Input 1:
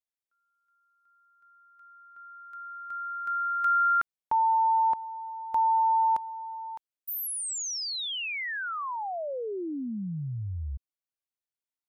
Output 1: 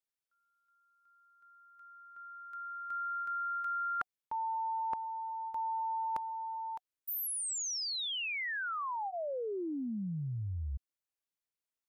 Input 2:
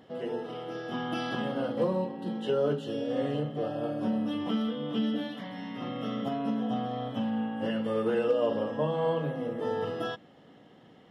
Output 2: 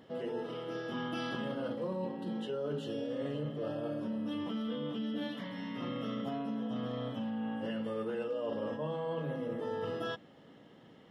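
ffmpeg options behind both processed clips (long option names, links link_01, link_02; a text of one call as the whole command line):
ffmpeg -i in.wav -af "bandreject=frequency=740:width=12,areverse,acompressor=threshold=-35dB:ratio=6:attack=47:release=71:knee=1:detection=rms,areverse,volume=-1.5dB" out.wav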